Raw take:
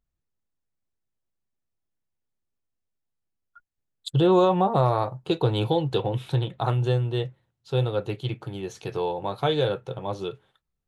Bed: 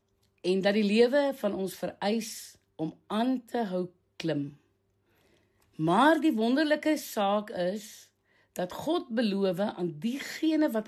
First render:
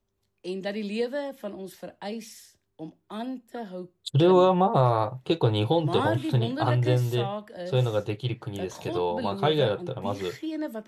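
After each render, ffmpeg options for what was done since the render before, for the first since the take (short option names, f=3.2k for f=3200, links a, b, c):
-filter_complex "[1:a]volume=-6dB[a];[0:a][a]amix=inputs=2:normalize=0"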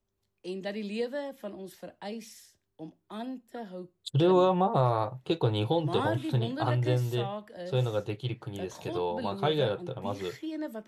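-af "volume=-4dB"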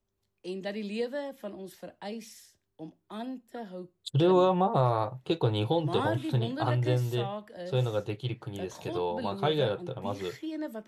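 -af anull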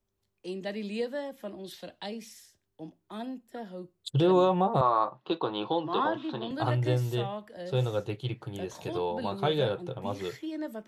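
-filter_complex "[0:a]asettb=1/sr,asplit=3[a][b][c];[a]atrim=end=1.644[d];[b]atrim=start=1.64:end=2.06,asetpts=PTS-STARTPTS,afade=t=in:d=0.004:c=qsin,afade=t=out:st=0.416:d=0.004:c=qsin,equalizer=f=3.7k:w=1.5:g=14[e];[c]atrim=start=2.056[f];[d][e]acrossfade=d=0.004:c1=hsin:c2=qsin[g];[g][f]acrossfade=d=0.004:c1=qsin:c2=hsin,asettb=1/sr,asplit=3[h][i][j];[h]atrim=end=4.814[k];[i]atrim=start=4.81:end=6.51,asetpts=PTS-STARTPTS,afade=t=in:d=0.004:c=qsin,afade=t=out:st=1.696:d=0.004:c=qsin,highpass=f=210:w=0.5412,highpass=f=210:w=1.3066,equalizer=f=450:t=q:w=4:g=-5,equalizer=f=1.1k:t=q:w=4:g=10,equalizer=f=2.2k:t=q:w=4:g=-7,lowpass=f=4.6k:w=0.5412,lowpass=f=4.6k:w=1.3066[l];[j]atrim=start=6.506[m];[k][l]acrossfade=d=0.004:c1=hsin:c2=qsin[n];[n][m]acrossfade=d=0.004:c1=qsin:c2=hsin"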